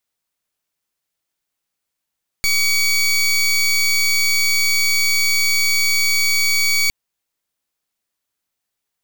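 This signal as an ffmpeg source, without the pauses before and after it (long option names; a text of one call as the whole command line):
ffmpeg -f lavfi -i "aevalsrc='0.158*(2*lt(mod(2260*t,1),0.2)-1)':duration=4.46:sample_rate=44100" out.wav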